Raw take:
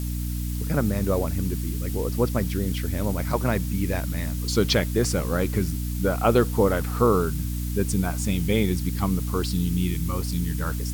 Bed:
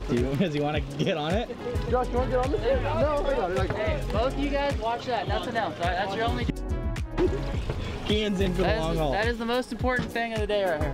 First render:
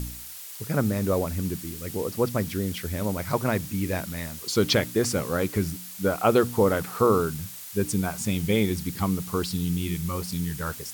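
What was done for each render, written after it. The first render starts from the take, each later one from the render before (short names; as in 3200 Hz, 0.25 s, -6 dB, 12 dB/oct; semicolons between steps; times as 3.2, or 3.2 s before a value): de-hum 60 Hz, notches 5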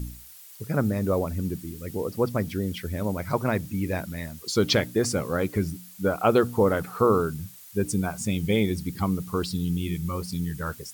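denoiser 9 dB, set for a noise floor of -40 dBFS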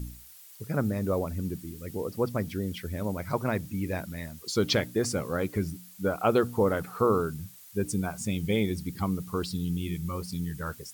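gain -3.5 dB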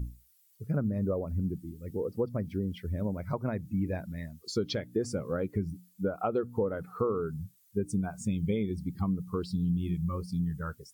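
compressor 6:1, threshold -28 dBFS, peak gain reduction 9.5 dB; spectral expander 1.5:1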